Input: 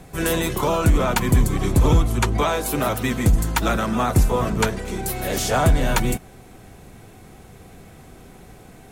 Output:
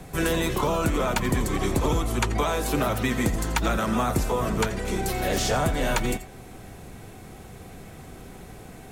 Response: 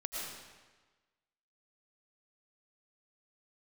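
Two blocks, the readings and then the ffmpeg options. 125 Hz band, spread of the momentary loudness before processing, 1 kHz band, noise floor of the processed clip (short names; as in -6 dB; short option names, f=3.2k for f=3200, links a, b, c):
-7.5 dB, 5 LU, -3.5 dB, -44 dBFS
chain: -filter_complex "[0:a]acrossover=split=250|7000[a][b][c];[a]acompressor=threshold=-29dB:ratio=4[d];[b]acompressor=threshold=-25dB:ratio=4[e];[c]acompressor=threshold=-41dB:ratio=4[f];[d][e][f]amix=inputs=3:normalize=0[g];[1:a]atrim=start_sample=2205,atrim=end_sample=3969[h];[g][h]afir=irnorm=-1:irlink=0,volume=4.5dB"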